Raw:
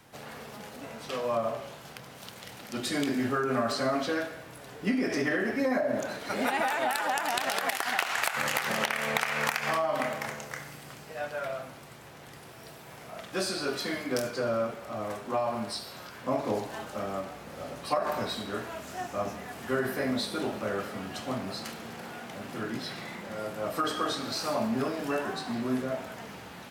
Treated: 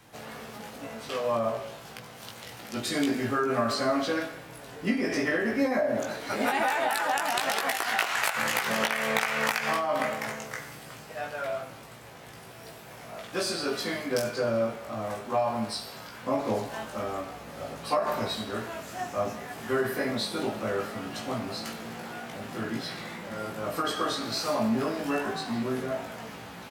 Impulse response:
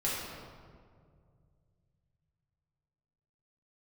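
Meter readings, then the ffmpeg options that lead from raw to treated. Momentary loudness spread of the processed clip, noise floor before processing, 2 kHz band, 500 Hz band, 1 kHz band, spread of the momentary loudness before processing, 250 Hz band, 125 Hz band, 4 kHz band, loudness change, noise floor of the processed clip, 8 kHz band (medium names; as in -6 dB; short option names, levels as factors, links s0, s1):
16 LU, -48 dBFS, +1.5 dB, +2.0 dB, +2.0 dB, 16 LU, +1.5 dB, +1.5 dB, +2.0 dB, +1.5 dB, -46 dBFS, +2.0 dB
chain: -filter_complex "[0:a]asplit=2[s0][s1];[s1]adelay=18,volume=0.708[s2];[s0][s2]amix=inputs=2:normalize=0"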